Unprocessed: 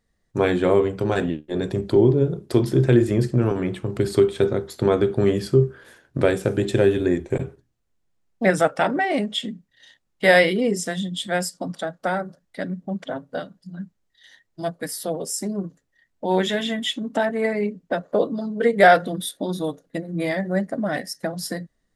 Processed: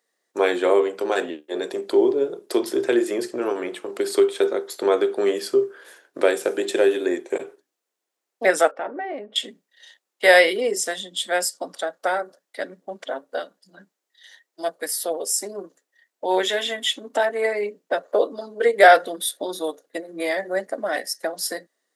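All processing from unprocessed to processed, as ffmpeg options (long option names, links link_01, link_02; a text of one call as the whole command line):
ffmpeg -i in.wav -filter_complex "[0:a]asettb=1/sr,asplit=3[link_01][link_02][link_03];[link_01]atrim=end=8.714[link_04];[link_02]atrim=start=8.71:end=9.36,asetpts=PTS-STARTPTS,afade=type=in:duration=0.004:curve=qsin,afade=type=out:start_time=0.646:duration=0.004:curve=qsin,lowpass=1400,equalizer=frequency=950:width_type=o:width=2.5:gain=-5.5,acompressor=threshold=-28dB:ratio=2:attack=3.2:release=140:knee=1:detection=peak[link_05];[link_03]atrim=start=9.356[link_06];[link_04][link_05]acrossfade=duration=0.004:curve1=hsin:curve2=qsin[link_07];[link_07][link_06]acrossfade=duration=0.004:curve1=qsin:curve2=hsin,highpass=frequency=360:width=0.5412,highpass=frequency=360:width=1.3066,highshelf=frequency=6000:gain=5.5,volume=1.5dB" out.wav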